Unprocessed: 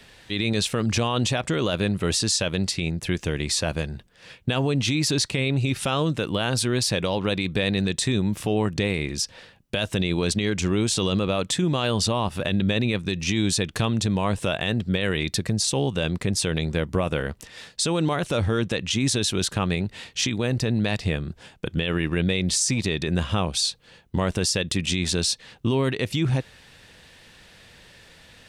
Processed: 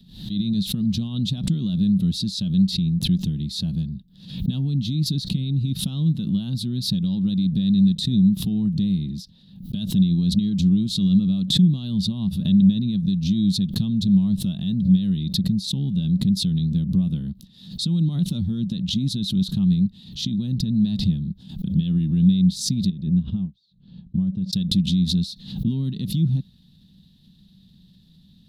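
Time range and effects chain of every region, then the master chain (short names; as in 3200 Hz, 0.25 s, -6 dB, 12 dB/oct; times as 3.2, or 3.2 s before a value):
22.9–24.53 tape spacing loss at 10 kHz 28 dB + notch 1900 Hz, Q 18 + upward expander 2.5:1, over -37 dBFS
whole clip: EQ curve 110 Hz 0 dB, 190 Hz +14 dB, 480 Hz -24 dB, 800 Hz -22 dB, 1500 Hz -28 dB, 2300 Hz -28 dB, 3800 Hz -1 dB, 5800 Hz -16 dB, 8600 Hz -20 dB, 12000 Hz -5 dB; backwards sustainer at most 96 dB/s; gain -3 dB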